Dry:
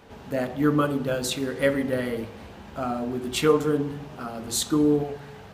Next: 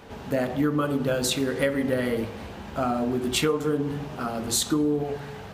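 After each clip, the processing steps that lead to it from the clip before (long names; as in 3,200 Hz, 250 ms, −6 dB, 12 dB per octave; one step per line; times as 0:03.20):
downward compressor 6 to 1, threshold −25 dBFS, peak gain reduction 11 dB
level +4.5 dB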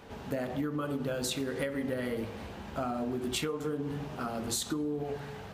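downward compressor, threshold −25 dBFS, peak gain reduction 6.5 dB
level −4.5 dB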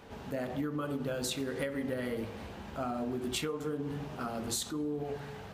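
level that may rise only so fast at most 220 dB per second
level −1.5 dB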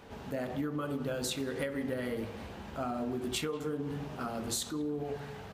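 far-end echo of a speakerphone 190 ms, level −18 dB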